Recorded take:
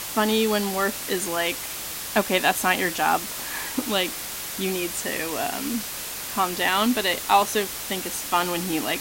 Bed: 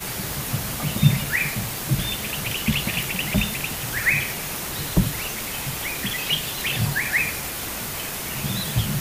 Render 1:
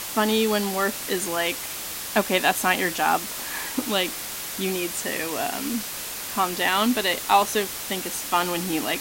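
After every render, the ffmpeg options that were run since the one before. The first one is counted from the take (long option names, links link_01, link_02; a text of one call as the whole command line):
ffmpeg -i in.wav -af "bandreject=frequency=50:width_type=h:width=4,bandreject=frequency=100:width_type=h:width=4,bandreject=frequency=150:width_type=h:width=4" out.wav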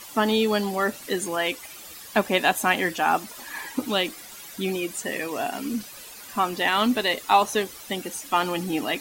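ffmpeg -i in.wav -af "afftdn=noise_reduction=13:noise_floor=-33" out.wav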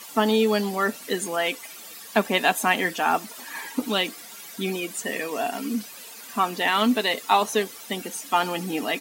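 ffmpeg -i in.wav -af "highpass=160,aecho=1:1:4.4:0.33" out.wav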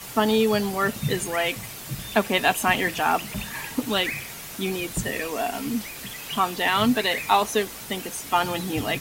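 ffmpeg -i in.wav -i bed.wav -filter_complex "[1:a]volume=-11dB[link_01];[0:a][link_01]amix=inputs=2:normalize=0" out.wav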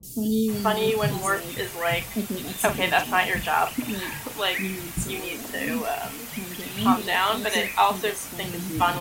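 ffmpeg -i in.wav -filter_complex "[0:a]asplit=2[link_01][link_02];[link_02]adelay=41,volume=-10dB[link_03];[link_01][link_03]amix=inputs=2:normalize=0,acrossover=split=370|4600[link_04][link_05][link_06];[link_06]adelay=30[link_07];[link_05]adelay=480[link_08];[link_04][link_08][link_07]amix=inputs=3:normalize=0" out.wav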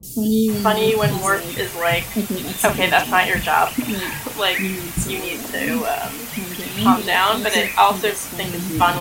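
ffmpeg -i in.wav -af "volume=6dB,alimiter=limit=-1dB:level=0:latency=1" out.wav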